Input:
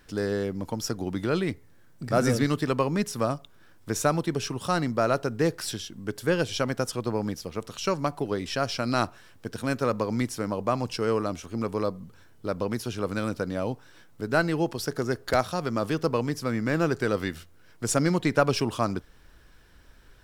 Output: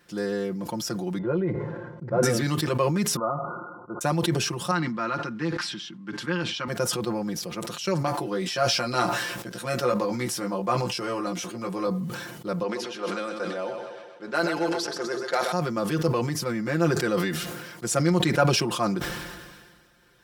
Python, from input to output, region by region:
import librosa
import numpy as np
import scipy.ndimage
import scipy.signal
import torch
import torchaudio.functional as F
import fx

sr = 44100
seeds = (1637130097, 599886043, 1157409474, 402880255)

y = fx.chain(x, sr, fx.lowpass(hz=1000.0, slope=12),
    fx.comb(ms=2.0, depth=0.45), at=(1.18, 2.23))
y = fx.chain(y, sr, fx.brickwall_lowpass(high_hz=1500.0),
    fx.tilt_eq(slope=3.5), at=(3.16, 4.01))
y = fx.chain(y, sr, fx.bandpass_edges(low_hz=190.0, high_hz=3600.0),
    fx.band_shelf(hz=530.0, db=-11.5, octaves=1.2), at=(4.71, 6.68))
y = fx.chain(y, sr, fx.low_shelf(hz=180.0, db=-6.0),
    fx.doubler(ms=16.0, db=-3.5), at=(8.06, 11.87))
y = fx.chain(y, sr, fx.highpass(hz=400.0, slope=12),
    fx.env_lowpass(base_hz=3000.0, full_db=-22.5),
    fx.echo_split(split_hz=380.0, low_ms=84, high_ms=127, feedback_pct=52, wet_db=-8), at=(12.63, 15.52))
y = scipy.signal.sosfilt(scipy.signal.butter(2, 110.0, 'highpass', fs=sr, output='sos'), y)
y = y + 0.92 * np.pad(y, (int(5.7 * sr / 1000.0), 0))[:len(y)]
y = fx.sustainer(y, sr, db_per_s=36.0)
y = y * 10.0 ** (-3.0 / 20.0)